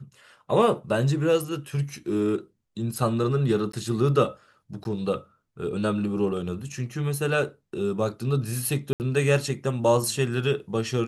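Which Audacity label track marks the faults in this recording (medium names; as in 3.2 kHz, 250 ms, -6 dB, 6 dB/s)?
3.720000	3.730000	dropout 14 ms
4.840000	4.850000	dropout 11 ms
8.930000	9.000000	dropout 69 ms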